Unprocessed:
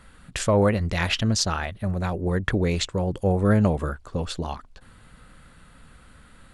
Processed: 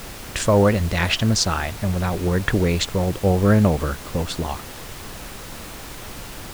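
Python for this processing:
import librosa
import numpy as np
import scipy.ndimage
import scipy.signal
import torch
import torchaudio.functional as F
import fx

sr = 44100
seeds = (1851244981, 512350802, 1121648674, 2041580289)

y = fx.dmg_noise_colour(x, sr, seeds[0], colour='pink', level_db=-39.0)
y = y * librosa.db_to_amplitude(3.5)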